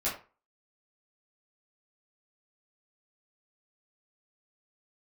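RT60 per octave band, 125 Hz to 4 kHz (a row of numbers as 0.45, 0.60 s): 0.35, 0.30, 0.35, 0.35, 0.30, 0.25 s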